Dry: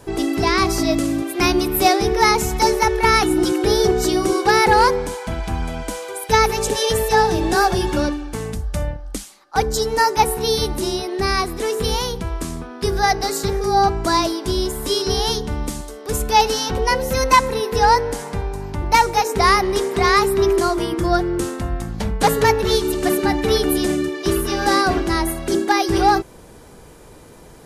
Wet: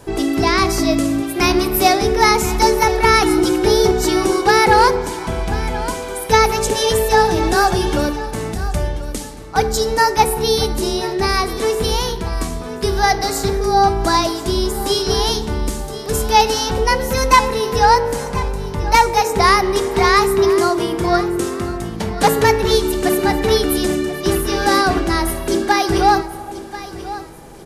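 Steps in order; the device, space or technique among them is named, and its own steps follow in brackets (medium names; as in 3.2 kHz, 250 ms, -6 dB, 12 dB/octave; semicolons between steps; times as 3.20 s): compressed reverb return (on a send at -6.5 dB: reverberation RT60 1.3 s, pre-delay 18 ms + compression, threshold -21 dBFS, peak gain reduction 12.5 dB); 20.39–22.41 s: on the sum: high-pass 87 Hz 12 dB/octave; feedback delay 1036 ms, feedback 28%, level -15 dB; trim +2 dB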